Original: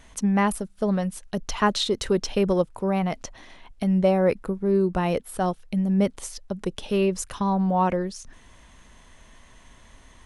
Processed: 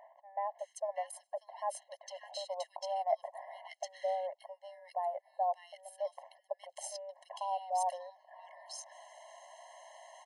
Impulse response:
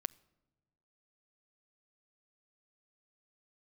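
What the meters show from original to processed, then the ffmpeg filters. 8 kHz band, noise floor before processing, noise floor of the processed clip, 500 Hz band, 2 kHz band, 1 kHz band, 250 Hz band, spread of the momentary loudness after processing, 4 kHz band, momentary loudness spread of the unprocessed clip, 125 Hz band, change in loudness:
−11.5 dB, −52 dBFS, −72 dBFS, −14.0 dB, −20.0 dB, −7.5 dB, below −40 dB, 19 LU, −16.0 dB, 10 LU, below −40 dB, −15.0 dB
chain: -filter_complex "[0:a]bandreject=frequency=50:width_type=h:width=6,bandreject=frequency=100:width_type=h:width=6,bandreject=frequency=150:width_type=h:width=6,bandreject=frequency=200:width_type=h:width=6,areverse,acompressor=threshold=-35dB:ratio=16,areverse,equalizer=frequency=710:width_type=o:width=0.65:gain=13.5,acrossover=split=1700[link_01][link_02];[link_02]adelay=590[link_03];[link_01][link_03]amix=inputs=2:normalize=0,afftfilt=real='re*eq(mod(floor(b*sr/1024/550),2),1)':imag='im*eq(mod(floor(b*sr/1024/550),2),1)':win_size=1024:overlap=0.75,volume=-1dB"

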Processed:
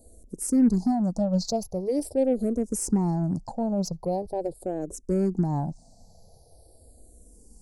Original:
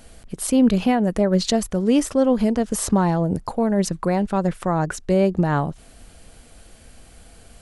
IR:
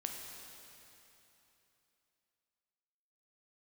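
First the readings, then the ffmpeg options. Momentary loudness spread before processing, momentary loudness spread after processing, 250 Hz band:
6 LU, 10 LU, −5.5 dB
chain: -filter_complex "[0:a]asuperstop=centerf=2000:order=12:qfactor=0.55,aeval=exprs='0.398*(cos(1*acos(clip(val(0)/0.398,-1,1)))-cos(1*PI/2))+0.00631*(cos(8*acos(clip(val(0)/0.398,-1,1)))-cos(8*PI/2))':channel_layout=same,asplit=2[link_01][link_02];[link_02]afreqshift=-0.43[link_03];[link_01][link_03]amix=inputs=2:normalize=1,volume=-3.5dB"

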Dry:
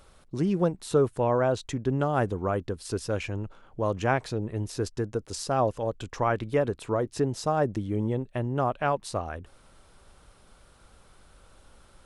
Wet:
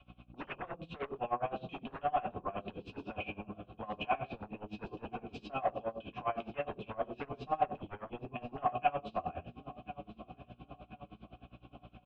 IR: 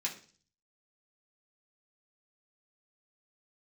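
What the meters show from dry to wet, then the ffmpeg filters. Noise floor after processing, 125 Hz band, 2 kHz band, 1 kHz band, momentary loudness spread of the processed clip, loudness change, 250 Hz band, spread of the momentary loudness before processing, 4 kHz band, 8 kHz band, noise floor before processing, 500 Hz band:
−66 dBFS, −18.5 dB, −9.0 dB, −4.5 dB, 18 LU, −11.0 dB, −14.5 dB, 8 LU, −9.5 dB, below −35 dB, −57 dBFS, −13.0 dB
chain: -filter_complex "[0:a]lowpass=frequency=3100:width_type=q:width=4.6[link_01];[1:a]atrim=start_sample=2205[link_02];[link_01][link_02]afir=irnorm=-1:irlink=0,asplit=2[link_03][link_04];[link_04]acompressor=threshold=-35dB:ratio=6,volume=1dB[link_05];[link_03][link_05]amix=inputs=2:normalize=0,aeval=exprs='val(0)+0.00631*(sin(2*PI*60*n/s)+sin(2*PI*2*60*n/s)/2+sin(2*PI*3*60*n/s)/3+sin(2*PI*4*60*n/s)/4+sin(2*PI*5*60*n/s)/5)':channel_layout=same,asplit=3[link_06][link_07][link_08];[link_06]bandpass=frequency=730:width_type=q:width=8,volume=0dB[link_09];[link_07]bandpass=frequency=1090:width_type=q:width=8,volume=-6dB[link_10];[link_08]bandpass=frequency=2440:width_type=q:width=8,volume=-9dB[link_11];[link_09][link_10][link_11]amix=inputs=3:normalize=0,lowshelf=frequency=160:gain=6,aecho=1:1:1043|2086|3129|4172|5215:0.15|0.0778|0.0405|0.021|0.0109,adynamicequalizer=threshold=0.00355:dfrequency=220:dqfactor=1.3:tfrequency=220:tqfactor=1.3:attack=5:release=100:ratio=0.375:range=1.5:mode=cutabove:tftype=bell,acrossover=split=280|880[link_12][link_13][link_14];[link_12]aeval=exprs='0.0119*sin(PI/2*7.94*val(0)/0.0119)':channel_layout=same[link_15];[link_15][link_13][link_14]amix=inputs=3:normalize=0,aeval=exprs='val(0)*pow(10,-22*(0.5-0.5*cos(2*PI*9.7*n/s))/20)':channel_layout=same,volume=1dB"

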